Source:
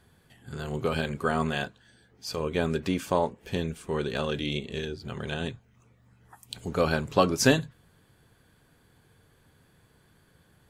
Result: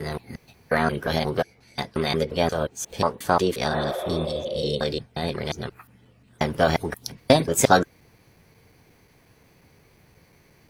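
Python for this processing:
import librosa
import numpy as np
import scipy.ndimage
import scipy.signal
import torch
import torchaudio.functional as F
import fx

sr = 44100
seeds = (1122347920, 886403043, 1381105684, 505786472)

y = fx.block_reorder(x, sr, ms=178.0, group=4)
y = fx.spec_repair(y, sr, seeds[0], start_s=3.73, length_s=0.96, low_hz=350.0, high_hz=2700.0, source='both')
y = fx.formant_shift(y, sr, semitones=5)
y = y * 10.0 ** (5.0 / 20.0)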